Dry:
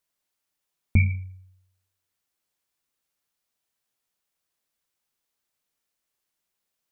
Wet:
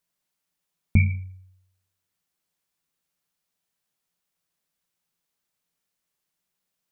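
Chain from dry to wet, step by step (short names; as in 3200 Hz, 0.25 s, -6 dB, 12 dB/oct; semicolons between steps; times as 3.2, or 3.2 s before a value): bell 170 Hz +11 dB 0.34 oct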